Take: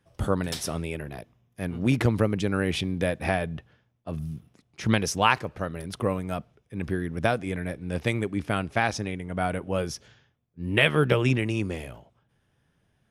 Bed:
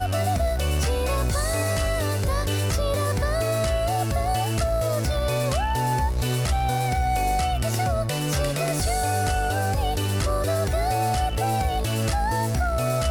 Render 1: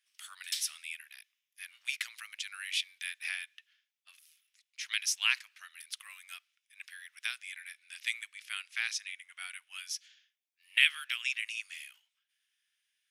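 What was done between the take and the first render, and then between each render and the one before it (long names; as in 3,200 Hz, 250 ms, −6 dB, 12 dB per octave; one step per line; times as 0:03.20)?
inverse Chebyshev high-pass filter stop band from 470 Hz, stop band 70 dB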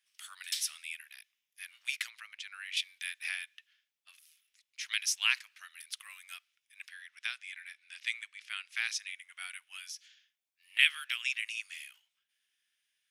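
0:02.10–0:02.77: low-pass filter 2,400 Hz 6 dB per octave
0:06.89–0:08.68: high-frequency loss of the air 51 metres
0:09.62–0:10.79: downward compressor, threshold −39 dBFS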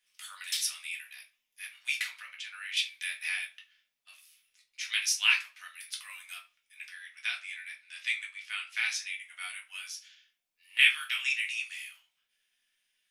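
rectangular room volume 160 cubic metres, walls furnished, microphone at 1.9 metres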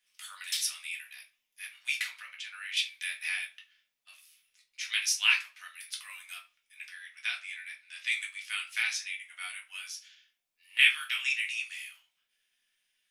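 0:08.11–0:08.82: high-shelf EQ 4,000 Hz → 7,700 Hz +11.5 dB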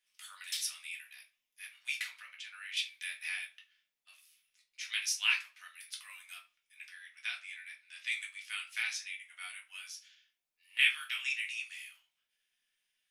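level −5 dB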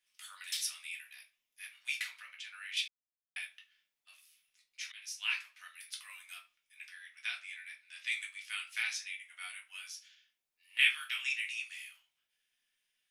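0:02.88–0:03.36: silence
0:04.92–0:05.64: fade in, from −22 dB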